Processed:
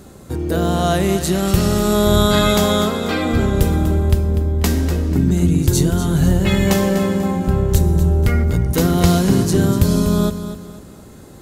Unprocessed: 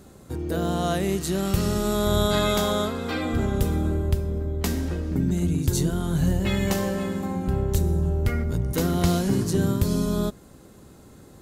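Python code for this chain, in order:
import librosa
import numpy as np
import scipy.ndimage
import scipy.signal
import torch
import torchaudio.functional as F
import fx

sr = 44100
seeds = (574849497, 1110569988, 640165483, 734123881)

y = fx.echo_feedback(x, sr, ms=245, feedback_pct=37, wet_db=-11)
y = y * librosa.db_to_amplitude(7.5)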